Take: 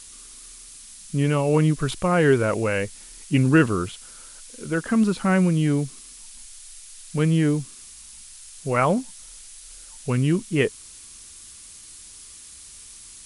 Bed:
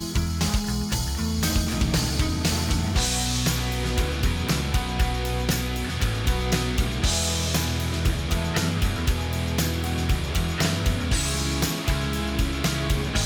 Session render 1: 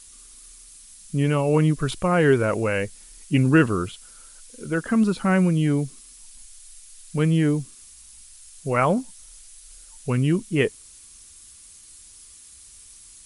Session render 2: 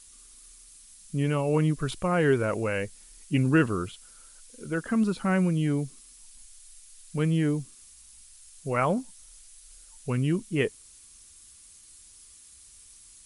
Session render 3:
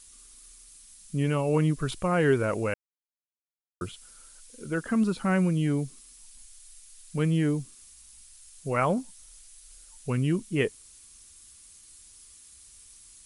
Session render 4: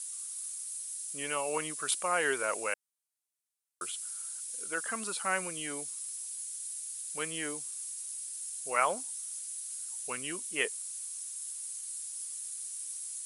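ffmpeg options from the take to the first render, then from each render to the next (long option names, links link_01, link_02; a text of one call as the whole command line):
ffmpeg -i in.wav -af "afftdn=noise_reduction=6:noise_floor=-44" out.wav
ffmpeg -i in.wav -af "volume=-5dB" out.wav
ffmpeg -i in.wav -filter_complex "[0:a]asplit=3[link_01][link_02][link_03];[link_01]atrim=end=2.74,asetpts=PTS-STARTPTS,afade=type=out:start_time=2.736:duration=0.004:curve=hsin[link_04];[link_02]atrim=start=2.74:end=3.81,asetpts=PTS-STARTPTS,volume=0[link_05];[link_03]atrim=start=3.81,asetpts=PTS-STARTPTS,afade=type=in:duration=0.004:curve=hsin[link_06];[link_04][link_05][link_06]concat=n=3:v=0:a=1" out.wav
ffmpeg -i in.wav -af "highpass=740,equalizer=frequency=9400:width_type=o:width=1.1:gain=13.5" out.wav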